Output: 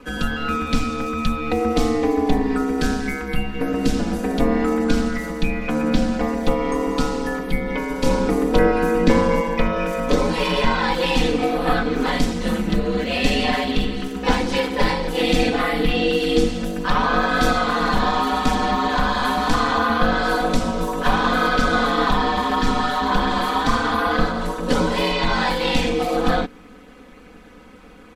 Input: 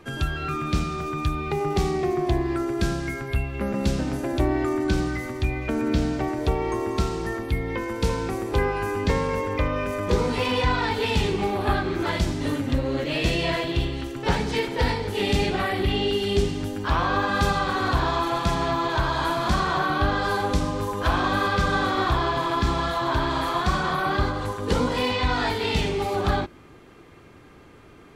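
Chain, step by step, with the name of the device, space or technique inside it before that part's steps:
0:08.06–0:09.41: parametric band 240 Hz +6 dB 2.4 octaves
ring-modulated robot voice (ring modulation 73 Hz; comb filter 4 ms, depth 96%)
level +4.5 dB

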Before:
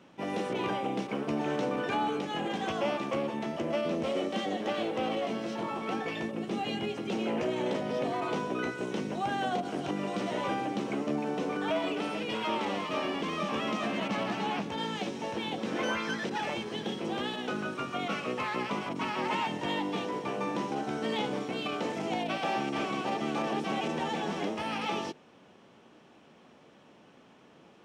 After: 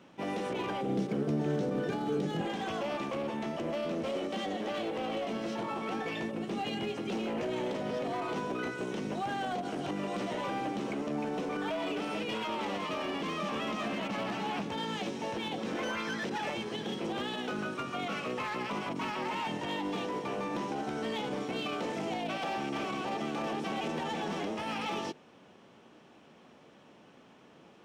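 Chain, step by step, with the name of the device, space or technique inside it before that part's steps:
limiter into clipper (brickwall limiter −25.5 dBFS, peak gain reduction 6 dB; hard clipping −29 dBFS, distortion −20 dB)
0:00.81–0:02.41: graphic EQ with 15 bands 160 Hz +12 dB, 400 Hz +5 dB, 1,000 Hz −8 dB, 2,500 Hz −7 dB

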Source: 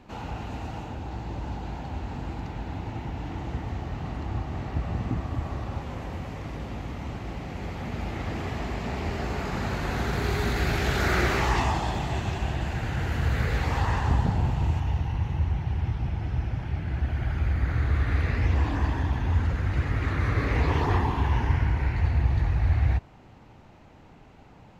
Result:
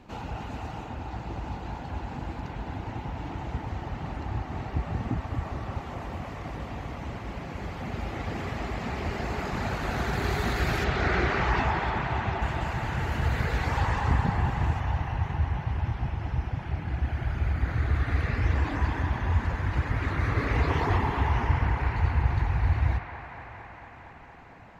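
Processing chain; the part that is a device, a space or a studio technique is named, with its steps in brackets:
reverb reduction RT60 0.7 s
0:10.84–0:12.42: high-frequency loss of the air 140 metres
filtered reverb send (on a send at −7.5 dB: high-pass filter 290 Hz 6 dB per octave + low-pass filter 5,800 Hz + convolution reverb RT60 3.6 s, pre-delay 24 ms)
on the sum: delay with a band-pass on its return 229 ms, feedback 80%, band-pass 1,200 Hz, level −5 dB

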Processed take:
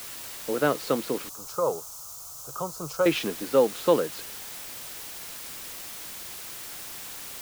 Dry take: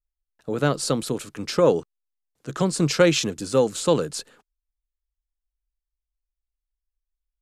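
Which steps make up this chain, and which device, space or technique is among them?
wax cylinder (band-pass filter 270–2,600 Hz; tape wow and flutter; white noise bed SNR 12 dB)
0:01.29–0:03.06: drawn EQ curve 120 Hz 0 dB, 260 Hz −18 dB, 380 Hz −13 dB, 560 Hz −6 dB, 1,300 Hz −1 dB, 1,800 Hz −25 dB, 3,700 Hz −12 dB, 6,500 Hz +3 dB, 9,300 Hz −2 dB

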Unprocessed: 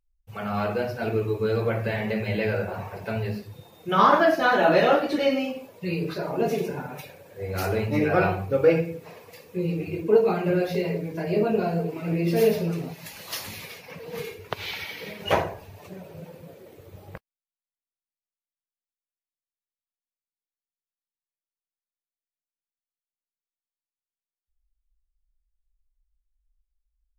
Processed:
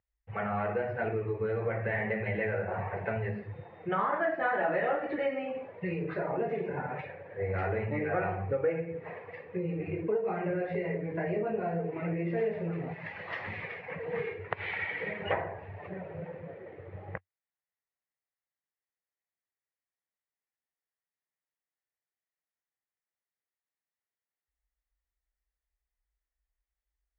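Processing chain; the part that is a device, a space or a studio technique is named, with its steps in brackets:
bass amplifier (downward compressor 4 to 1, threshold −31 dBFS, peak gain reduction 15.5 dB; loudspeaker in its box 78–2,300 Hz, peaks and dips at 92 Hz +4 dB, 250 Hz −6 dB, 500 Hz +3 dB, 760 Hz +4 dB, 1,900 Hz +10 dB)

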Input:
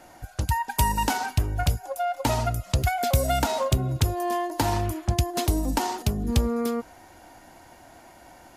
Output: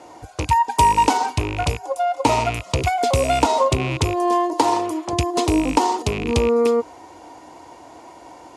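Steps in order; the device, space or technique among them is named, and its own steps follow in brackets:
0:04.53–0:05.13: high-pass filter 280 Hz 12 dB per octave
car door speaker with a rattle (loose part that buzzes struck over −28 dBFS, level −21 dBFS; loudspeaker in its box 83–9,400 Hz, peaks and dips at 120 Hz −4 dB, 200 Hz −7 dB, 310 Hz +6 dB, 450 Hz +9 dB, 1,000 Hz +9 dB, 1,600 Hz −8 dB)
level +4.5 dB

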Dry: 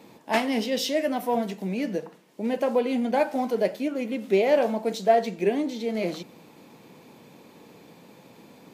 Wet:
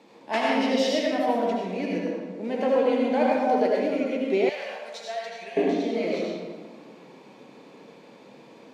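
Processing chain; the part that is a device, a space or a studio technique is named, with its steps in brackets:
supermarket ceiling speaker (band-pass filter 220–6,200 Hz; convolution reverb RT60 1.5 s, pre-delay 71 ms, DRR −4 dB)
0:04.49–0:05.57: guitar amp tone stack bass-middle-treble 10-0-10
level −3 dB

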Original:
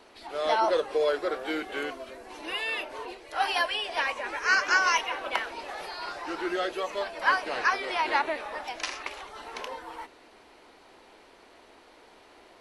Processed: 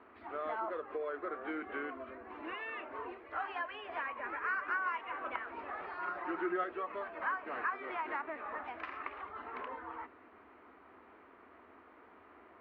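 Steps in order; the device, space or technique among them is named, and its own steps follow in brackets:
bass amplifier (downward compressor 3 to 1, threshold −33 dBFS, peak gain reduction 11.5 dB; loudspeaker in its box 73–2,100 Hz, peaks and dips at 81 Hz +9 dB, 140 Hz −7 dB, 260 Hz +4 dB, 540 Hz −5 dB, 840 Hz −4 dB, 1,200 Hz +7 dB)
0:05.98–0:06.64: comb filter 5.5 ms, depth 66%
level −3.5 dB

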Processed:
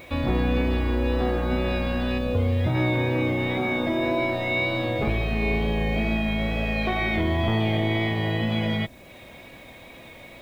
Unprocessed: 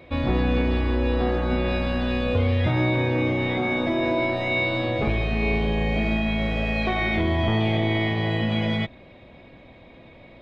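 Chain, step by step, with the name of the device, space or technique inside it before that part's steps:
0:02.18–0:02.75: parametric band 2,300 Hz −6 dB 2.5 octaves
noise-reduction cassette on a plain deck (one half of a high-frequency compander encoder only; tape wow and flutter 19 cents; white noise bed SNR 36 dB)
level −1 dB

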